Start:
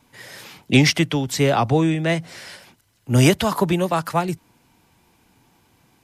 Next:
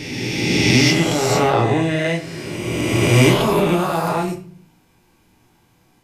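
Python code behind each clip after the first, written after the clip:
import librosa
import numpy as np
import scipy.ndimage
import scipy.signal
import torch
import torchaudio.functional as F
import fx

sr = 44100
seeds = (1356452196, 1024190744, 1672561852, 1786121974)

y = fx.spec_swells(x, sr, rise_s=2.59)
y = fx.room_shoebox(y, sr, seeds[0], volume_m3=39.0, walls='mixed', distance_m=0.55)
y = y * 10.0 ** (-6.0 / 20.0)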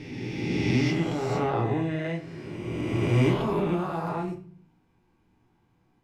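y = fx.lowpass(x, sr, hz=1200.0, slope=6)
y = fx.peak_eq(y, sr, hz=580.0, db=-4.5, octaves=0.49)
y = y * 10.0 ** (-8.0 / 20.0)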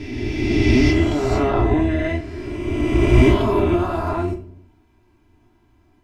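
y = fx.octave_divider(x, sr, octaves=1, level_db=0.0)
y = y + 0.79 * np.pad(y, (int(3.0 * sr / 1000.0), 0))[:len(y)]
y = y * 10.0 ** (5.5 / 20.0)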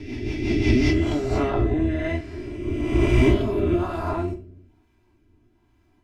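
y = fx.rotary_switch(x, sr, hz=5.5, then_hz=1.1, switch_at_s=0.71)
y = y * 10.0 ** (-2.5 / 20.0)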